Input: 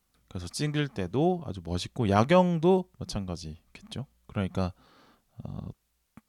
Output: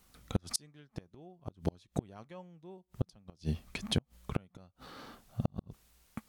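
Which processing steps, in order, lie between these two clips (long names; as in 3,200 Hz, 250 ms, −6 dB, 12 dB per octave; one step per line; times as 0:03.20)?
gate with flip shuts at −26 dBFS, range −37 dB
level +9 dB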